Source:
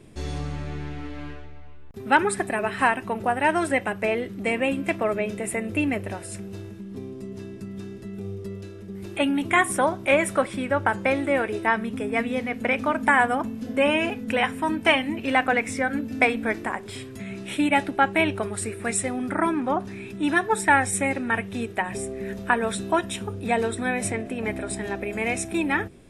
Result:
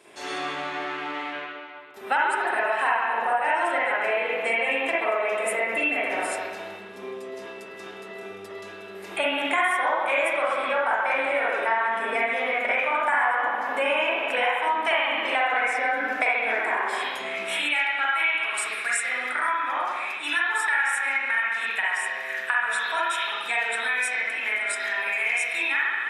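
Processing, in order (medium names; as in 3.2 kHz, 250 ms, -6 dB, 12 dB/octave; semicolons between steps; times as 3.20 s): Chebyshev high-pass 760 Hz, order 2, from 17.53 s 1.7 kHz; reverberation RT60 1.2 s, pre-delay 44 ms, DRR -9 dB; compression 4:1, threshold -27 dBFS, peak gain reduction 17 dB; trim +4 dB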